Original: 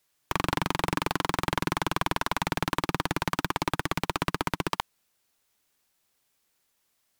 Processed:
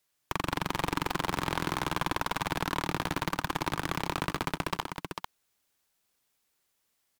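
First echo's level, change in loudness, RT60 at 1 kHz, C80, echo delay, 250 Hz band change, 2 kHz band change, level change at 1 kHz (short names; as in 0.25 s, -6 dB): -16.0 dB, -3.0 dB, none, none, 83 ms, -3.0 dB, -3.0 dB, -2.5 dB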